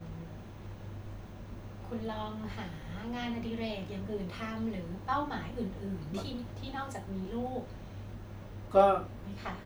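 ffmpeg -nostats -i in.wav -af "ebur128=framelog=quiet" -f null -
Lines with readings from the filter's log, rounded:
Integrated loudness:
  I:         -35.6 LUFS
  Threshold: -46.2 LUFS
Loudness range:
  LRA:         7.2 LU
  Threshold: -57.3 LUFS
  LRA low:   -40.4 LUFS
  LRA high:  -33.2 LUFS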